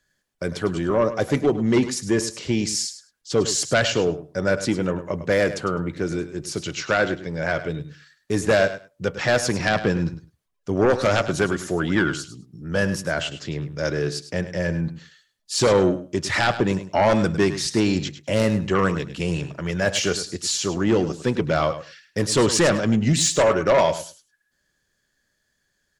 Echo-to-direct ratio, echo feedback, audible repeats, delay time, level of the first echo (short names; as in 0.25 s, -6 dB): -12.5 dB, 15%, 2, 0.103 s, -12.5 dB